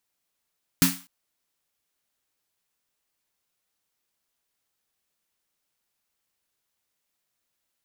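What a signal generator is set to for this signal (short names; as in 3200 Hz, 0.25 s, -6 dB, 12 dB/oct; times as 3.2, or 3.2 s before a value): snare drum length 0.25 s, tones 180 Hz, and 270 Hz, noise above 920 Hz, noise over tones -1 dB, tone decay 0.28 s, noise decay 0.36 s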